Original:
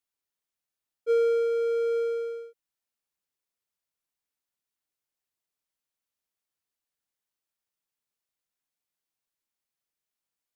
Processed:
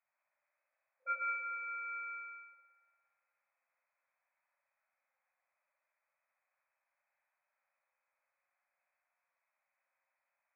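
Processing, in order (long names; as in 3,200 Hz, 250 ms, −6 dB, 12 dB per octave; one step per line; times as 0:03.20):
spring reverb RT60 1.5 s, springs 57 ms, chirp 50 ms, DRR −3 dB
brick-wall band-pass 510–2,600 Hz
level +7 dB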